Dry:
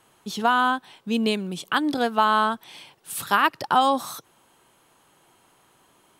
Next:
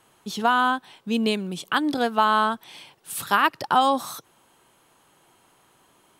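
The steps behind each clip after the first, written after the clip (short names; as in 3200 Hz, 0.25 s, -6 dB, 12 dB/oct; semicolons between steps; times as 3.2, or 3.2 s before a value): nothing audible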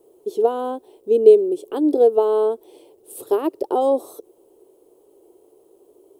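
resonant low shelf 260 Hz -13 dB, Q 3; bit-crush 10-bit; EQ curve 210 Hz 0 dB, 430 Hz +9 dB, 1600 Hz -27 dB, 3000 Hz -19 dB, 6100 Hz -17 dB, 9100 Hz -8 dB; gain +2.5 dB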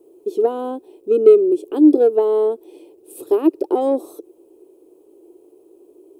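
in parallel at -5 dB: soft clip -10 dBFS, distortion -12 dB; on the sum: small resonant body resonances 320/2500 Hz, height 12 dB, ringing for 30 ms; gain -6.5 dB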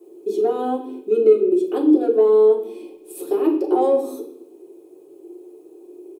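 compressor 2.5:1, threshold -20 dBFS, peak gain reduction 10 dB; doubler 42 ms -13.5 dB; reverb RT60 0.65 s, pre-delay 3 ms, DRR -3 dB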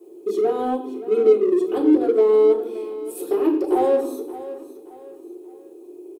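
in parallel at -9 dB: overloaded stage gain 23 dB; on the sum: feedback echo 0.574 s, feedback 36%, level -15 dB; gain -2 dB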